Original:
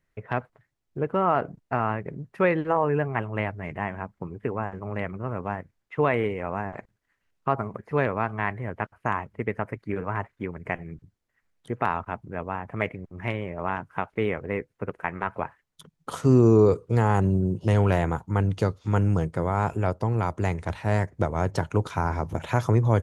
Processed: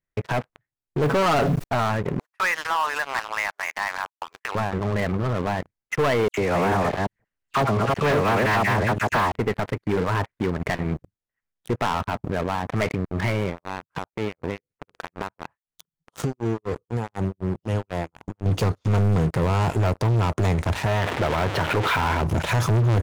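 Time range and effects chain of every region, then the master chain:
1.03–1.64 s: comb 7.2 ms, depth 81% + short-mantissa float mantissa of 4-bit + level flattener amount 50%
2.19–4.55 s: gate -41 dBFS, range -36 dB + high-pass 930 Hz 24 dB/octave + upward compressor, threshold -33 dBFS
6.28–9.32 s: chunks repeated in reverse 174 ms, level -2 dB + phase dispersion lows, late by 97 ms, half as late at 2.7 kHz
13.49–18.46 s: dynamic bell 1.6 kHz, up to -4 dB, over -45 dBFS, Q 2 + compression 4:1, threshold -35 dBFS + tremolo 4 Hz, depth 99%
20.86–22.21 s: jump at every zero crossing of -26 dBFS + low-pass 3.5 kHz 24 dB/octave + bass shelf 430 Hz -11.5 dB
whole clip: waveshaping leveller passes 5; peak limiter -13.5 dBFS; trim -3 dB

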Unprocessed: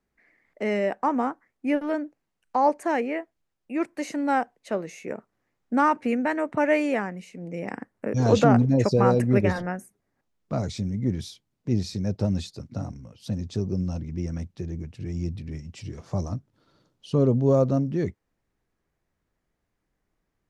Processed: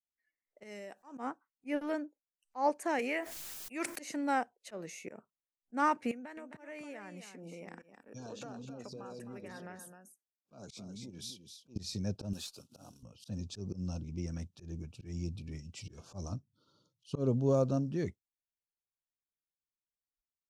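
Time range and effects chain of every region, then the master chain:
0.63–1.18 s: tone controls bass -1 dB, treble +10 dB + compression, threshold -35 dBFS
2.99–4.00 s: tilt EQ +2.5 dB/octave + level flattener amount 70%
6.11–11.76 s: high-pass 180 Hz + compression 8:1, threshold -35 dBFS + delay 261 ms -8.5 dB
12.33–13.03 s: CVSD coder 64 kbps + high-pass 490 Hz 6 dB/octave + valve stage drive 24 dB, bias 0.35
whole clip: spectral noise reduction 25 dB; treble shelf 3 kHz +8.5 dB; slow attack 121 ms; trim -8.5 dB

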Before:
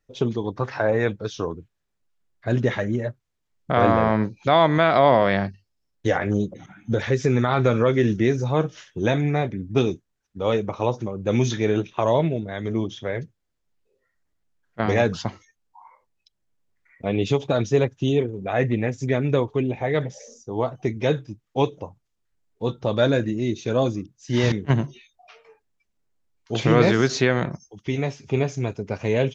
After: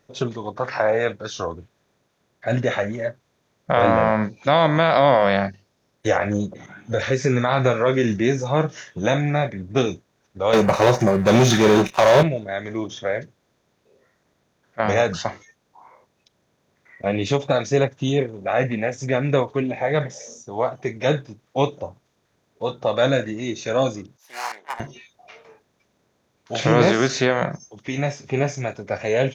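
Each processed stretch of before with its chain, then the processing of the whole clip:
10.53–12.23 s: waveshaping leveller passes 3 + comb 5.3 ms, depth 34%
24.17–24.80 s: self-modulated delay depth 0.75 ms + ladder high-pass 760 Hz, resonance 60%
whole clip: spectral levelling over time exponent 0.6; high-pass 41 Hz; spectral noise reduction 11 dB; trim -2 dB

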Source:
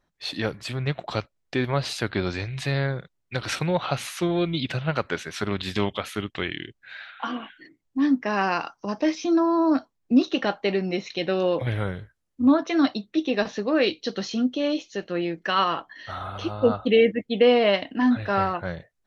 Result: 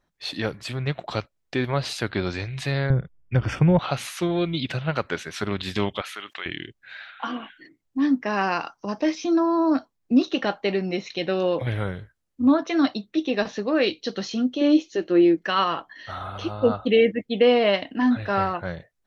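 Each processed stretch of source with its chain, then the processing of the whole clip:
2.90–3.79 s: Butterworth band-stop 4 kHz, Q 3.8 + RIAA curve playback
6.01–6.46 s: high-pass 1.2 kHz + tilt EQ -2.5 dB/octave + level flattener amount 50%
14.61–15.37 s: peaking EQ 330 Hz +13 dB 0.51 oct + band-stop 210 Hz, Q 6.8
whole clip: none

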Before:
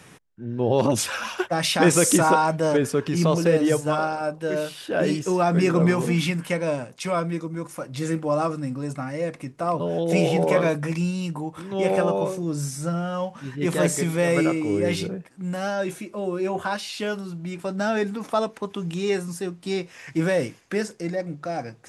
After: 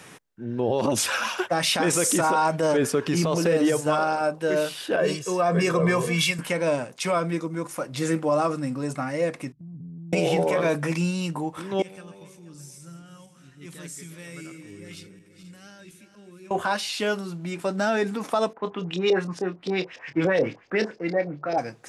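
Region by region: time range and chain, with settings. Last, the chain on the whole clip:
4.96–6.39 s: band-stop 590 Hz + comb 1.8 ms, depth 68% + three bands expanded up and down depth 100%
9.52–10.13 s: inverse Chebyshev low-pass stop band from 510 Hz, stop band 50 dB + compression 2:1, threshold -40 dBFS
11.82–16.51 s: backward echo that repeats 241 ms, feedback 63%, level -12 dB + amplifier tone stack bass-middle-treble 6-0-2
18.53–21.58 s: LFO low-pass saw up 7 Hz 440–5300 Hz + doubling 27 ms -9.5 dB + three bands expanded up and down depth 40%
whole clip: bass shelf 150 Hz -10 dB; peak limiter -17 dBFS; trim +3.5 dB

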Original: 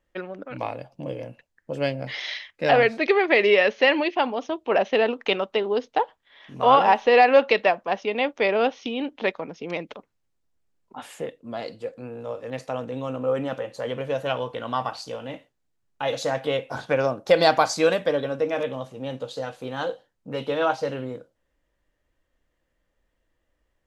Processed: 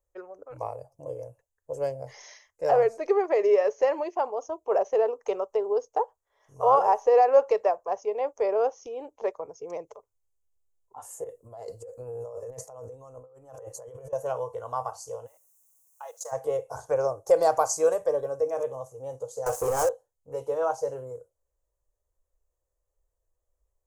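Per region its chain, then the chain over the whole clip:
11.24–14.13 s: peaking EQ 200 Hz +2 dB 0.7 oct + compressor with a negative ratio -37 dBFS
15.26–16.31 s: high-pass 850 Hz + level held to a coarse grid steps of 17 dB + added noise white -68 dBFS
19.46–19.89 s: waveshaping leveller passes 5 + bass shelf 140 Hz -6 dB
whole clip: FFT filter 100 Hz 0 dB, 230 Hz -27 dB, 420 Hz -1 dB, 780 Hz -4 dB, 1.1 kHz -4 dB, 1.7 kHz -17 dB, 3.7 kHz -28 dB, 6.5 kHz +5 dB; spectral noise reduction 6 dB

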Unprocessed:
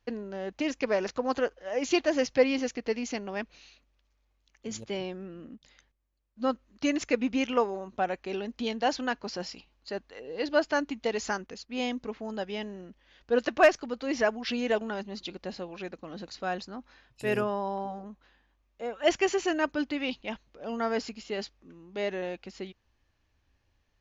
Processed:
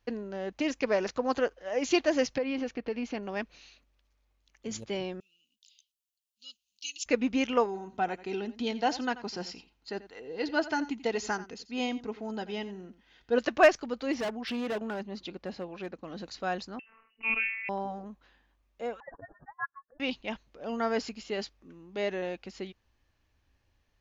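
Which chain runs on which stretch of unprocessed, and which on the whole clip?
2.38–3.23 s: low-pass 3.1 kHz + band-stop 2 kHz, Q 14 + compression 4:1, threshold -28 dBFS
5.20–7.06 s: elliptic high-pass 2.8 kHz + treble shelf 6.6 kHz +6 dB
7.66–13.38 s: comb of notches 570 Hz + delay 87 ms -16 dB
14.13–16.03 s: treble shelf 3.8 kHz -9 dB + hard clipper -29.5 dBFS + high-pass 50 Hz
16.79–17.69 s: hum notches 50/100/150/200/250/300/350/400/450 Hz + robot voice 223 Hz + frequency inversion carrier 2.9 kHz
19.00–20.00 s: spectral contrast enhancement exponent 2.2 + steep high-pass 810 Hz 96 dB/octave + frequency inversion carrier 2.6 kHz
whole clip: none

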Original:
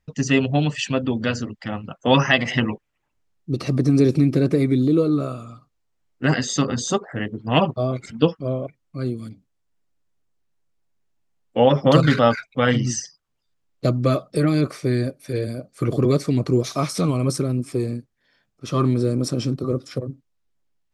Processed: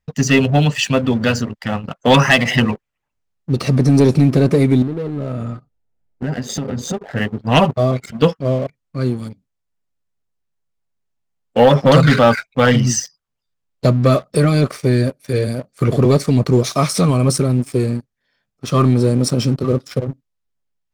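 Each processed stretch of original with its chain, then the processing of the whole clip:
4.82–7.12 s: Butterworth band-stop 1.1 kHz, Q 4.7 + tilt shelf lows +8 dB, about 1.3 kHz + compression, threshold -26 dBFS
whole clip: peaking EQ 320 Hz -10.5 dB 0.21 oct; waveshaping leveller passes 2; dynamic bell 9.2 kHz, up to +5 dB, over -51 dBFS, Q 6.9

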